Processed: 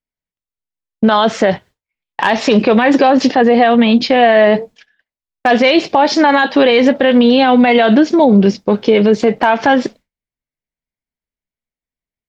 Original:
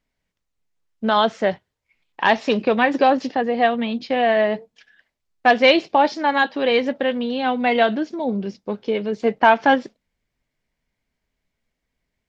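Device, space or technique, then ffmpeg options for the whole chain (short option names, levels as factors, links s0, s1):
loud club master: -af "agate=range=0.0224:threshold=0.01:ratio=3:detection=peak,acompressor=threshold=0.126:ratio=2.5,asoftclip=type=hard:threshold=0.376,alimiter=level_in=8.91:limit=0.891:release=50:level=0:latency=1,volume=0.891"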